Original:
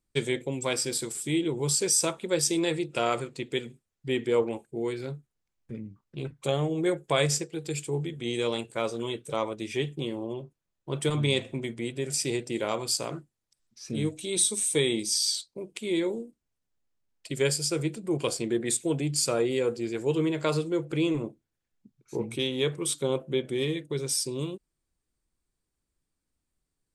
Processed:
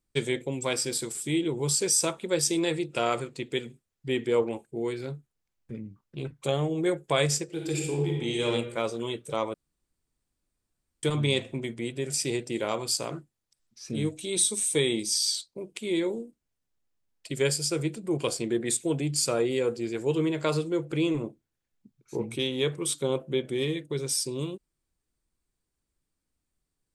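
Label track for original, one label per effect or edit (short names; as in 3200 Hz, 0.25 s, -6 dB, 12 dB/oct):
7.440000	8.450000	reverb throw, RT60 1.2 s, DRR -0.5 dB
9.540000	11.030000	room tone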